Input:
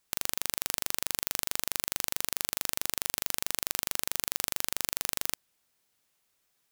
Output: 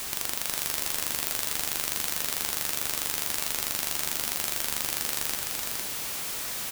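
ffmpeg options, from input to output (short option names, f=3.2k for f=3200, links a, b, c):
-filter_complex "[0:a]aeval=exprs='val(0)+0.5*0.0422*sgn(val(0))':c=same,asplit=2[a][b];[b]aecho=0:1:460:0.596[c];[a][c]amix=inputs=2:normalize=0,volume=-1dB"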